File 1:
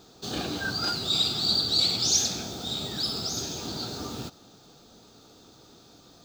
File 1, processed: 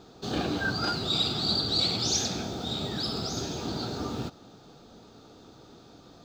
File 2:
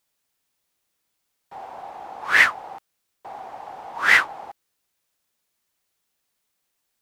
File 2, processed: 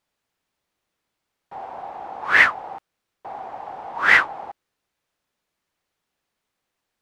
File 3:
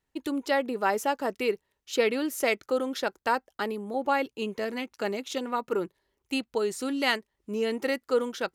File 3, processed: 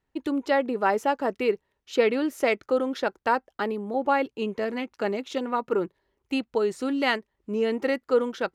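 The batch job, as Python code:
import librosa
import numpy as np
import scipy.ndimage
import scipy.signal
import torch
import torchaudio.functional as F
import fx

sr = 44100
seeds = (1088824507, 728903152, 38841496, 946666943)

y = fx.lowpass(x, sr, hz=2200.0, slope=6)
y = F.gain(torch.from_numpy(y), 3.5).numpy()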